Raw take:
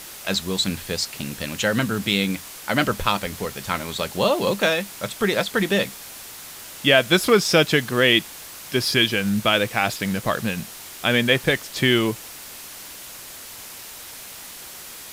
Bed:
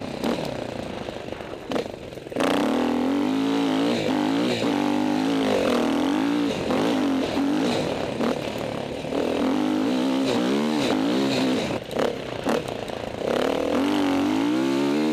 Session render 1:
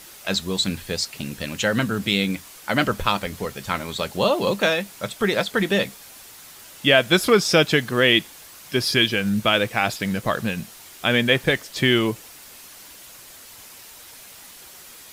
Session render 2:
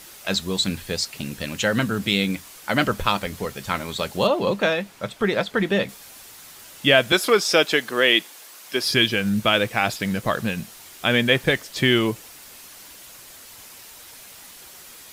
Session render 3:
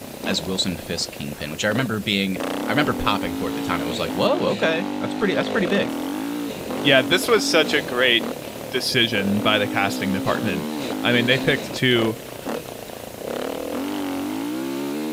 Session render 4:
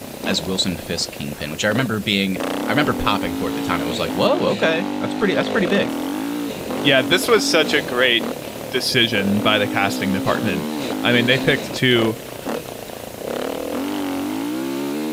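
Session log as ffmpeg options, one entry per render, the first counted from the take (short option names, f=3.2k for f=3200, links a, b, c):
-af "afftdn=nr=6:nf=-39"
-filter_complex "[0:a]asettb=1/sr,asplit=3[a][b][c];[a]atrim=end=4.274[d];[b]atrim=start=4.27:end=5.89,asetpts=PTS-STARTPTS,afade=t=in:d=0.004:c=qsin,afade=t=out:st=1.616:d=0.004:c=qsin,highshelf=f=4.7k:g=-11[e];[c]atrim=start=5.886[f];[d][e]acrossfade=d=0.004:c1=hsin:c2=qsin[g];[g][f]acrossfade=d=0.004:c1=qsin:c2=hsin,asettb=1/sr,asplit=3[h][i][j];[h]atrim=end=7.124[k];[i]atrim=start=7.12:end=8.85,asetpts=PTS-STARTPTS,afade=t=in:d=0.004:c=qsin,afade=t=out:st=1.726:d=0.004:c=qsin,highpass=330[l];[j]atrim=start=8.846[m];[k][l]acrossfade=d=0.004:c1=hsin:c2=qsin[n];[n][m]acrossfade=d=0.004:c1=qsin:c2=hsin"
-filter_complex "[1:a]volume=-4.5dB[a];[0:a][a]amix=inputs=2:normalize=0"
-af "volume=2.5dB,alimiter=limit=-3dB:level=0:latency=1"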